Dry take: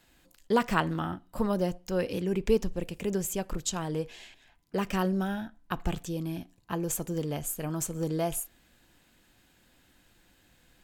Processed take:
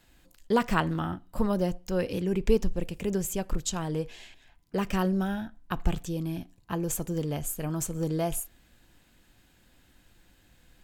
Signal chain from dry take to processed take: low shelf 110 Hz +7.5 dB

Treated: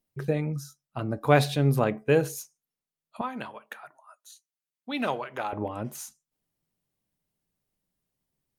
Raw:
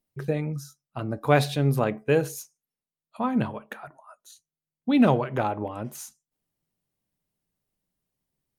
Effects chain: 3.21–5.53 HPF 1200 Hz 6 dB/oct

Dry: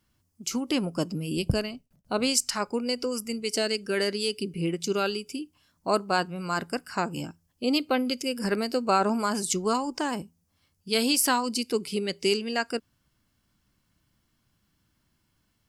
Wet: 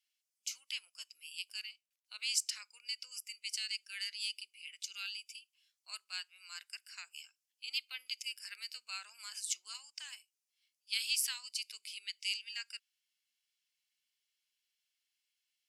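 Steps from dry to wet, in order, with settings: Chebyshev high-pass 2400 Hz, order 3; high shelf 11000 Hz -8.5 dB; gain -5.5 dB

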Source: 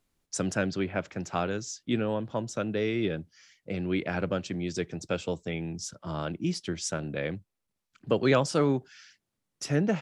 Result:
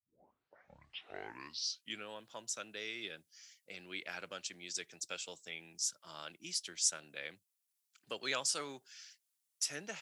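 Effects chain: tape start at the beginning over 2.09 s; differentiator; gain +4 dB

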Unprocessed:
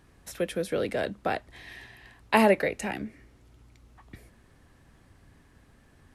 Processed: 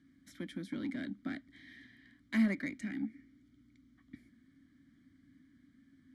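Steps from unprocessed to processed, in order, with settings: vowel filter i; in parallel at -8.5 dB: soft clip -38.5 dBFS, distortion -8 dB; on the sum: fixed phaser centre 1100 Hz, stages 4; gain +8.5 dB

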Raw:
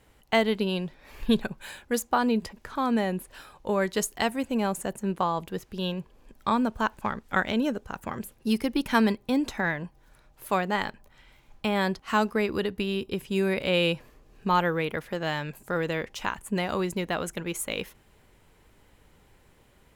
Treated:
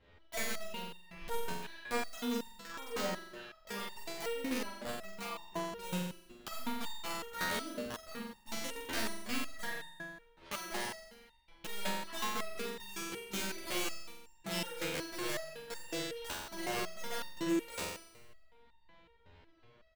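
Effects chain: block floating point 3-bit; LPF 4100 Hz 24 dB/oct; compressor 4:1, threshold -30 dBFS, peak gain reduction 12 dB; wrapped overs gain 24 dB; doubler 15 ms -4.5 dB; flutter echo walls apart 7.7 m, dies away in 1 s; stepped resonator 5.4 Hz 85–910 Hz; gain +3.5 dB

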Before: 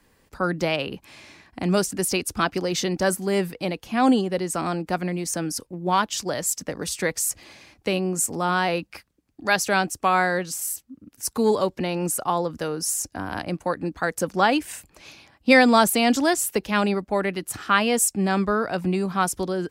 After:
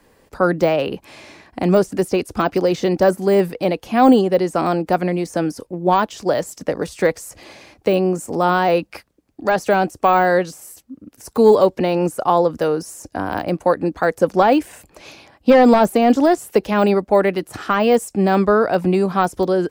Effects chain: bell 540 Hz +7.5 dB 1.8 oct; de-esser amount 85%; gain +3.5 dB

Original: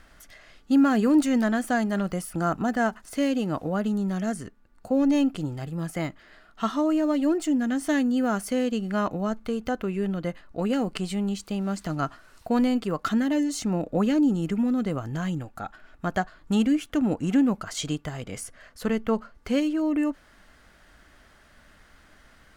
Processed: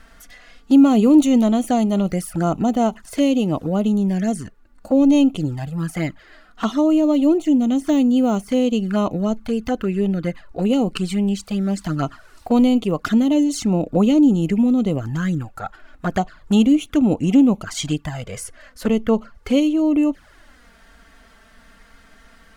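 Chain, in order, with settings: 7–8.63 de-esser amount 95%; envelope flanger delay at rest 4.9 ms, full sweep at -22.5 dBFS; gain +8 dB

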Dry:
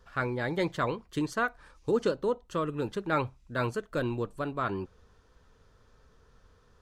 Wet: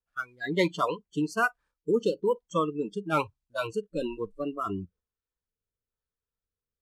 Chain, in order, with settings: CVSD 64 kbps; gate -53 dBFS, range -8 dB; dynamic EQ 2400 Hz, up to +4 dB, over -42 dBFS, Q 0.81; spectral noise reduction 29 dB; rotary speaker horn 1.1 Hz; gain +5 dB

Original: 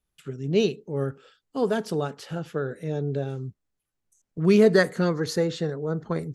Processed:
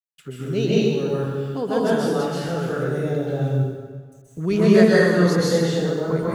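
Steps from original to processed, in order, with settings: in parallel at +2 dB: compressor, threshold -32 dBFS, peak gain reduction 18 dB; on the sum: requantised 10-bit, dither none; plate-style reverb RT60 1.6 s, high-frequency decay 0.75×, pre-delay 0.115 s, DRR -8 dB; gain -5.5 dB

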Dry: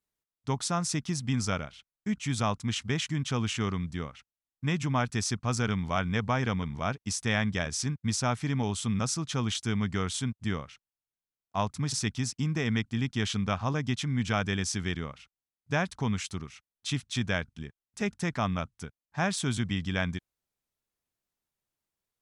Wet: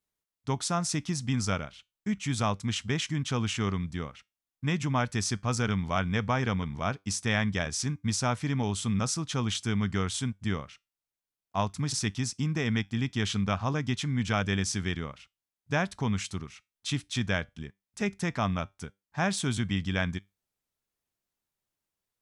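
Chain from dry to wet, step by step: resonator 98 Hz, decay 0.22 s, harmonics all, mix 30%; gain +2.5 dB

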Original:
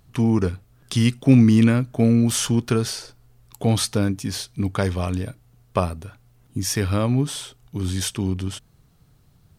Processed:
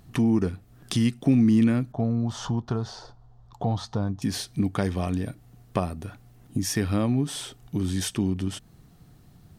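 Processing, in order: 1.92–4.22 EQ curve 100 Hz 0 dB, 300 Hz -12 dB, 950 Hz +4 dB, 2400 Hz -19 dB, 3500 Hz -8 dB, 6700 Hz -14 dB, 10000 Hz -29 dB; compressor 2:1, threshold -33 dBFS, peak gain reduction 13 dB; small resonant body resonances 210/310/720/1800 Hz, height 6 dB, ringing for 30 ms; gain +2 dB

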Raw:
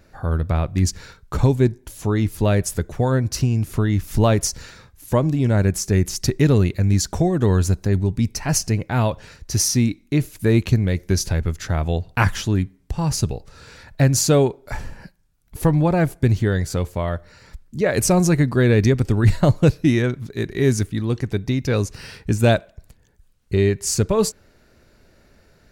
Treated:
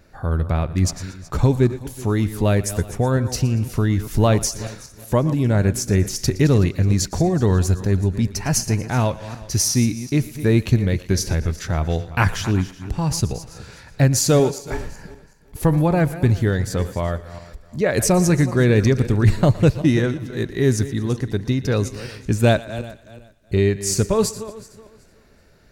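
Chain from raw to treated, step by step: regenerating reverse delay 0.187 s, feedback 46%, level -14 dB; 19.83–21.85 notch 2300 Hz, Q 11; thinning echo 0.117 s, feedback 49%, high-pass 420 Hz, level -18 dB

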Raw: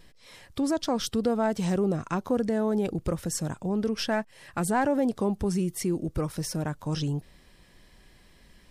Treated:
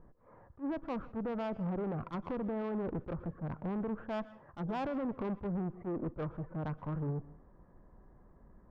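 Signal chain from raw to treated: steep low-pass 1300 Hz 36 dB/oct; limiter -22.5 dBFS, peak gain reduction 8 dB; tube stage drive 32 dB, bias 0.4; on a send at -17.5 dB: reverb RT60 0.40 s, pre-delay 0.112 s; on the sum: attack slew limiter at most 360 dB/s

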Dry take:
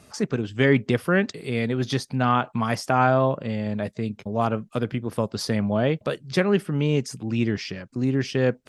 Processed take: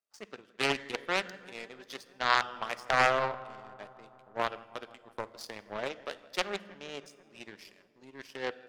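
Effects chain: HPF 520 Hz 12 dB/oct; power-law curve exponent 2; darkening echo 0.162 s, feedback 78%, low-pass 2600 Hz, level -21 dB; on a send at -15 dB: reverb RT60 1.1 s, pre-delay 5 ms; on the sum: Doppler distortion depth 0.45 ms; gain +2.5 dB

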